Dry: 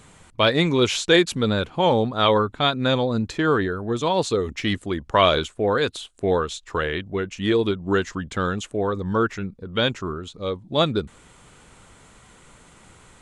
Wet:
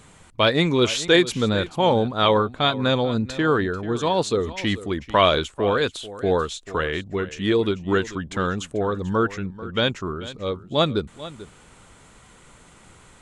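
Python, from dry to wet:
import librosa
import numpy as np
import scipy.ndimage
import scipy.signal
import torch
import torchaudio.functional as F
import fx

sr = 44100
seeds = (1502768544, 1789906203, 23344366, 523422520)

y = x + 10.0 ** (-16.0 / 20.0) * np.pad(x, (int(440 * sr / 1000.0), 0))[:len(x)]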